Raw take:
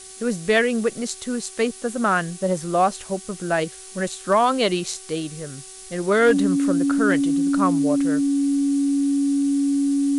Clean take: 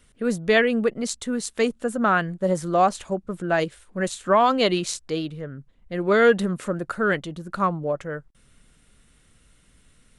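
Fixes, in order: clip repair -9 dBFS; de-hum 378.9 Hz, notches 36; notch 280 Hz, Q 30; noise print and reduce 18 dB

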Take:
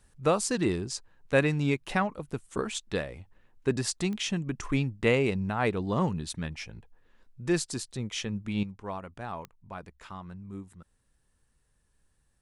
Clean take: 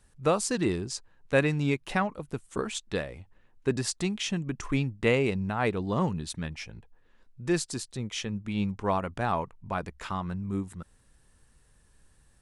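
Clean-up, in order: de-click; gain correction +9.5 dB, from 8.63

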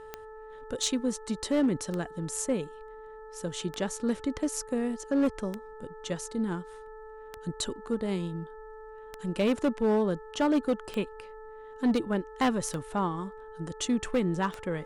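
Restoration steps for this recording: clip repair -20 dBFS; de-click; de-hum 436.2 Hz, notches 4

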